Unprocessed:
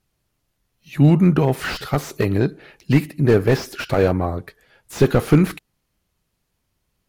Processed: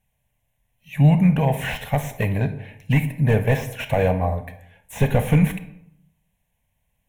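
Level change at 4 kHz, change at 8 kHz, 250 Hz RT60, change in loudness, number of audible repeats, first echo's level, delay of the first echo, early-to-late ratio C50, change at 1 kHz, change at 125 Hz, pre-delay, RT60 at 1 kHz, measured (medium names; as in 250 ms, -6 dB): -4.0 dB, -3.0 dB, 0.85 s, -2.0 dB, no echo, no echo, no echo, 12.0 dB, 0.0 dB, 0.0 dB, 27 ms, 0.70 s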